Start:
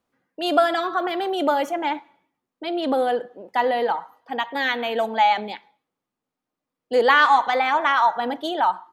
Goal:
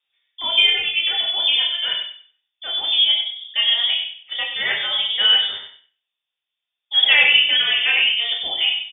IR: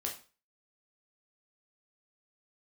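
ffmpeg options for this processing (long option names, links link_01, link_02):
-filter_complex "[0:a]asplit=2[link_01][link_02];[link_02]adelay=96,lowpass=frequency=2600:poles=1,volume=-6dB,asplit=2[link_03][link_04];[link_04]adelay=96,lowpass=frequency=2600:poles=1,volume=0.26,asplit=2[link_05][link_06];[link_06]adelay=96,lowpass=frequency=2600:poles=1,volume=0.26[link_07];[link_01][link_03][link_05][link_07]amix=inputs=4:normalize=0[link_08];[1:a]atrim=start_sample=2205[link_09];[link_08][link_09]afir=irnorm=-1:irlink=0,lowpass=frequency=3200:width_type=q:width=0.5098,lowpass=frequency=3200:width_type=q:width=0.6013,lowpass=frequency=3200:width_type=q:width=0.9,lowpass=frequency=3200:width_type=q:width=2.563,afreqshift=-3800"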